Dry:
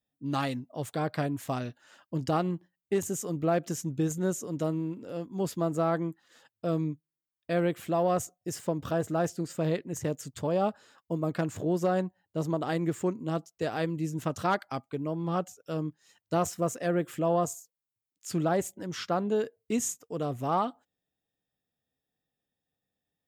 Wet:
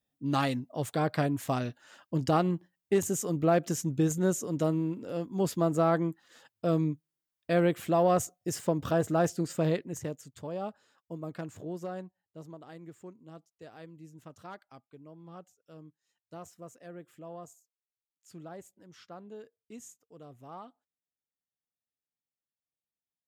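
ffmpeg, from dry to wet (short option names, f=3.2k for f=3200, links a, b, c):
-af "volume=2dB,afade=t=out:st=9.57:d=0.65:silence=0.281838,afade=t=out:st=11.5:d=1.11:silence=0.354813"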